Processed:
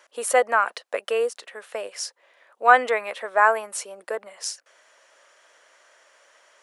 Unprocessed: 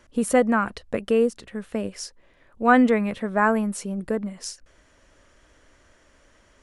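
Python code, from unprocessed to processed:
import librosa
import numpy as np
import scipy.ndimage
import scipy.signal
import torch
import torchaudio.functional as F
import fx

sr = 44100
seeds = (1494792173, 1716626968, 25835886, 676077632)

y = scipy.signal.sosfilt(scipy.signal.butter(4, 540.0, 'highpass', fs=sr, output='sos'), x)
y = y * 10.0 ** (4.0 / 20.0)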